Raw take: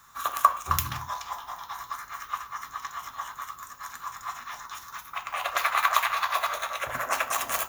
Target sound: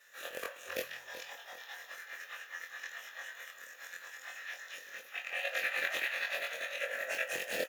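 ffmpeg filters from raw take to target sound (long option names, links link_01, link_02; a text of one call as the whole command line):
ffmpeg -i in.wav -filter_complex "[0:a]afftfilt=real='re':imag='-im':win_size=2048:overlap=0.75,aemphasis=mode=production:type=riaa,asplit=2[link_01][link_02];[link_02]acompressor=threshold=-32dB:ratio=6,volume=2.5dB[link_03];[link_01][link_03]amix=inputs=2:normalize=0,aeval=exprs='(tanh(1.78*val(0)+0.35)-tanh(0.35))/1.78':channel_layout=same,asplit=3[link_04][link_05][link_06];[link_04]bandpass=frequency=530:width_type=q:width=8,volume=0dB[link_07];[link_05]bandpass=frequency=1840:width_type=q:width=8,volume=-6dB[link_08];[link_06]bandpass=frequency=2480:width_type=q:width=8,volume=-9dB[link_09];[link_07][link_08][link_09]amix=inputs=3:normalize=0,asplit=2[link_10][link_11];[link_11]aecho=0:1:381|762|1143|1524:0.237|0.083|0.029|0.0102[link_12];[link_10][link_12]amix=inputs=2:normalize=0,volume=7dB" out.wav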